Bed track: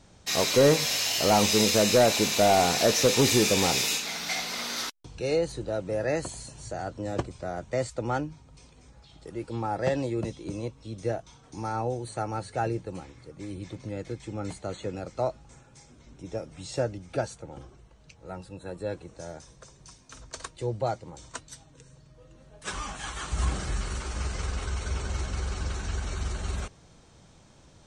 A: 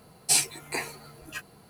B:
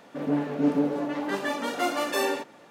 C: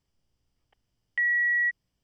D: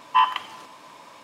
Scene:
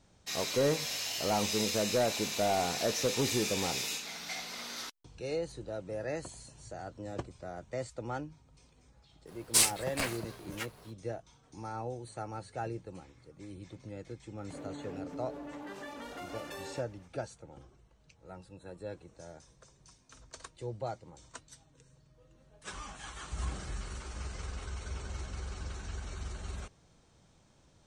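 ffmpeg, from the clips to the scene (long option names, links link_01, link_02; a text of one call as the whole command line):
ffmpeg -i bed.wav -i cue0.wav -i cue1.wav -filter_complex "[0:a]volume=-9dB[link_01];[1:a]aeval=exprs='val(0)*sgn(sin(2*PI*260*n/s))':channel_layout=same[link_02];[2:a]acompressor=threshold=-28dB:ratio=6:attack=3.2:release=140:knee=1:detection=peak[link_03];[link_02]atrim=end=1.69,asetpts=PTS-STARTPTS,volume=-2.5dB,afade=type=in:duration=0.05,afade=type=out:start_time=1.64:duration=0.05,adelay=9250[link_04];[link_03]atrim=end=2.7,asetpts=PTS-STARTPTS,volume=-11.5dB,afade=type=in:duration=0.004:curve=hsin,afade=type=out:start_time=2.696:duration=0.004:curve=hsin,adelay=14380[link_05];[link_01][link_04][link_05]amix=inputs=3:normalize=0" out.wav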